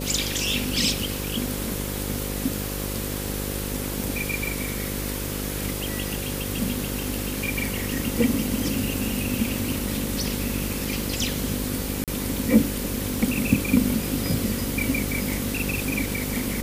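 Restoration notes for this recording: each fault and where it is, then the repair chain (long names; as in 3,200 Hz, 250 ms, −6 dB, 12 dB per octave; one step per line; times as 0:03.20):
mains buzz 50 Hz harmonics 11 −31 dBFS
0:12.04–0:12.08: drop-out 37 ms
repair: hum removal 50 Hz, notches 11
repair the gap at 0:12.04, 37 ms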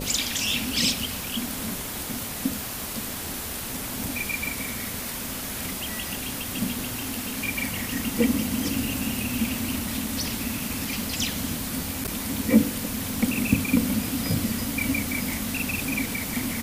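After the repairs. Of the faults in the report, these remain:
none of them is left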